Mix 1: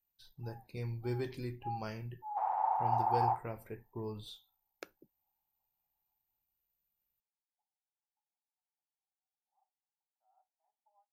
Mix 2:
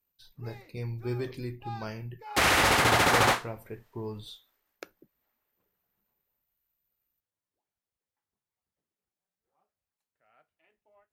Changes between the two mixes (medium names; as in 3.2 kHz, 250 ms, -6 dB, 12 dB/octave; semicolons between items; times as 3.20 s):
speech +4.0 dB; background: remove Butterworth band-pass 830 Hz, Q 4.6